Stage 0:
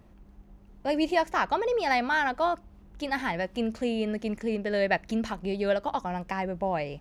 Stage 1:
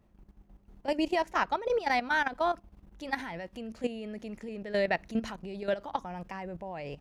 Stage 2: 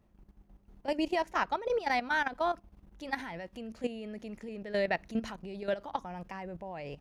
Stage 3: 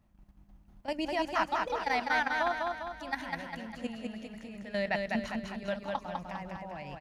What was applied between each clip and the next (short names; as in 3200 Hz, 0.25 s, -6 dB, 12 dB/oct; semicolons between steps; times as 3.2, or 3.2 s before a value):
level quantiser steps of 13 dB
notch 7600 Hz, Q 23; gain -2 dB
bell 420 Hz -13.5 dB 0.48 oct; on a send: feedback echo 0.201 s, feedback 50%, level -3 dB